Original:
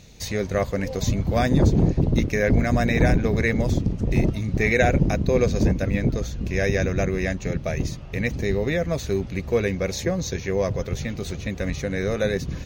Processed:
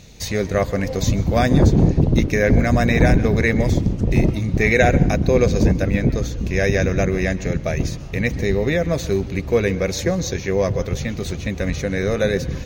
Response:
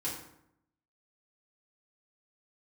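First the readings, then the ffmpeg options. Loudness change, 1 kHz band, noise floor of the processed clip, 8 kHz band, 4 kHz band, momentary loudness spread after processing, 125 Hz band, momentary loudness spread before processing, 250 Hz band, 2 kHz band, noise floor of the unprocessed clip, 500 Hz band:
+4.0 dB, +4.0 dB, -31 dBFS, +4.0 dB, +4.0 dB, 9 LU, +4.0 dB, 9 LU, +4.0 dB, +4.0 dB, -35 dBFS, +4.0 dB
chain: -filter_complex "[0:a]asplit=2[s0][s1];[1:a]atrim=start_sample=2205,adelay=125[s2];[s1][s2]afir=irnorm=-1:irlink=0,volume=0.1[s3];[s0][s3]amix=inputs=2:normalize=0,volume=1.58"

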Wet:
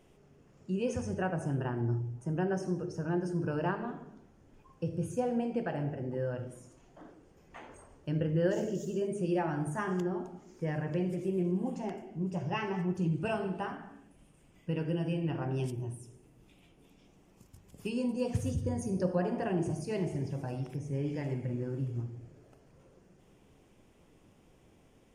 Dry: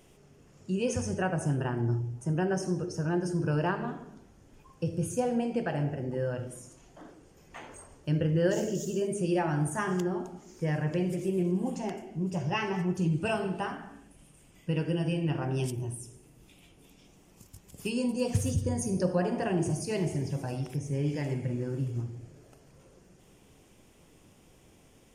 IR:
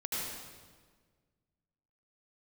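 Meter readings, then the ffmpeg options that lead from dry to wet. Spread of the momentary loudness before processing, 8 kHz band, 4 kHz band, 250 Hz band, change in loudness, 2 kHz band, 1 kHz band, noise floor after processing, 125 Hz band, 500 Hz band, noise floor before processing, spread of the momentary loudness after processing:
10 LU, -10.5 dB, -7.0 dB, -3.0 dB, -3.0 dB, -4.5 dB, -3.0 dB, -63 dBFS, -3.5 dB, -2.5 dB, -59 dBFS, 11 LU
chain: -af "highshelf=f=3500:g=-9.5,bandreject=f=50:t=h:w=6,bandreject=f=100:t=h:w=6,bandreject=f=150:t=h:w=6,volume=0.75"

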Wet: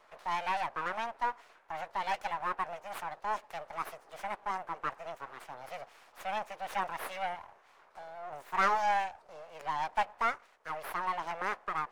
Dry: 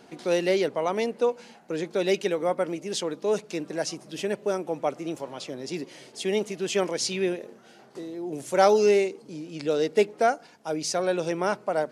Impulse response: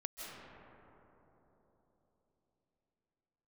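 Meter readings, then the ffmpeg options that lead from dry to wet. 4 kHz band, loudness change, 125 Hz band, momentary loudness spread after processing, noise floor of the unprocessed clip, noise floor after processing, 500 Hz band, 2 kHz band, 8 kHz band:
-12.5 dB, -9.0 dB, -16.5 dB, 15 LU, -53 dBFS, -63 dBFS, -19.0 dB, -2.5 dB, -18.5 dB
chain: -filter_complex "[0:a]aeval=exprs='abs(val(0))':c=same,acrossover=split=480 2300:gain=0.0891 1 0.224[s0][s1][s2];[s0][s1][s2]amix=inputs=3:normalize=0,volume=0.841"

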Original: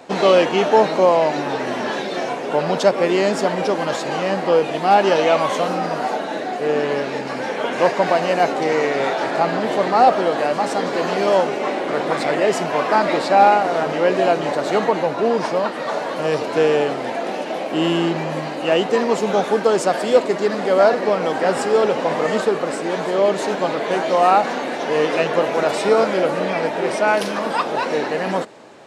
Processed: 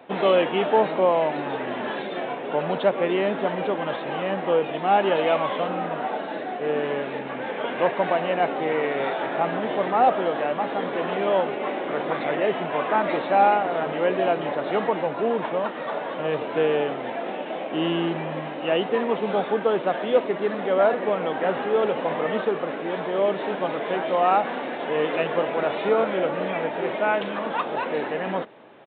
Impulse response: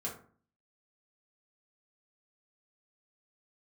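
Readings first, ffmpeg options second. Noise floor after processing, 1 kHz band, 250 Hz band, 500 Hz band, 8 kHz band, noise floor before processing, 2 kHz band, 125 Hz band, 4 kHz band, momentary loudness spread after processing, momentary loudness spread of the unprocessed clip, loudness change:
-32 dBFS, -5.5 dB, -5.5 dB, -5.5 dB, under -40 dB, -27 dBFS, -5.5 dB, -6.0 dB, -7.0 dB, 8 LU, 8 LU, -5.5 dB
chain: -af "highpass=84,aresample=8000,aresample=44100,volume=0.531"

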